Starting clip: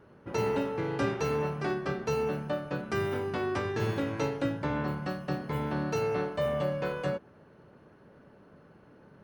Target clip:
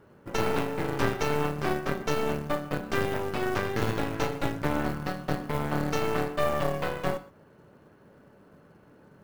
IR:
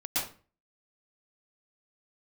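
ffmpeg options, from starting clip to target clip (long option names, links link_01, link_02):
-filter_complex "[0:a]acrusher=bits=6:mode=log:mix=0:aa=0.000001,aeval=exprs='0.158*(cos(1*acos(clip(val(0)/0.158,-1,1)))-cos(1*PI/2))+0.0631*(cos(4*acos(clip(val(0)/0.158,-1,1)))-cos(4*PI/2))':channel_layout=same,asplit=2[link_01][link_02];[1:a]atrim=start_sample=2205,atrim=end_sample=6174[link_03];[link_02][link_03]afir=irnorm=-1:irlink=0,volume=-23.5dB[link_04];[link_01][link_04]amix=inputs=2:normalize=0"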